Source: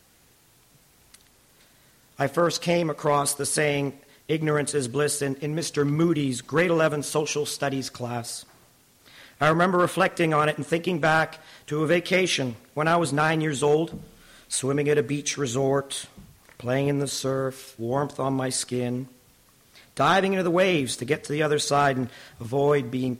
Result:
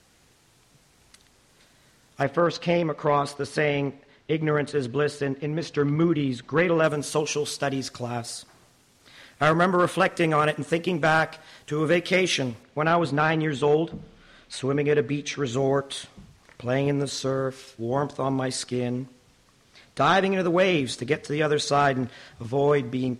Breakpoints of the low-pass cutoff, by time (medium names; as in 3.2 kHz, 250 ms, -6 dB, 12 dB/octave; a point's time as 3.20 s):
8.7 kHz
from 2.23 s 3.5 kHz
from 6.84 s 9.4 kHz
from 12.63 s 4.1 kHz
from 15.53 s 6.8 kHz